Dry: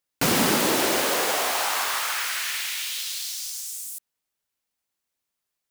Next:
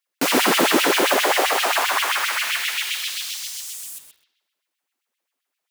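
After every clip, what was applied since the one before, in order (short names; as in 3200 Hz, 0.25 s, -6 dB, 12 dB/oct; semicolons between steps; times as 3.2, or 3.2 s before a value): spring tank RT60 1.1 s, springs 53 ms, chirp 60 ms, DRR -1 dB; LFO high-pass sine 7.6 Hz 250–3000 Hz; lo-fi delay 0.127 s, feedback 35%, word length 7-bit, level -8.5 dB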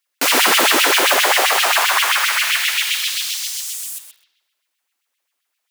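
HPF 1000 Hz 6 dB/oct; gain +6.5 dB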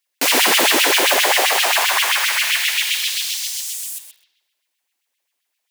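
bell 1300 Hz -7 dB 0.45 oct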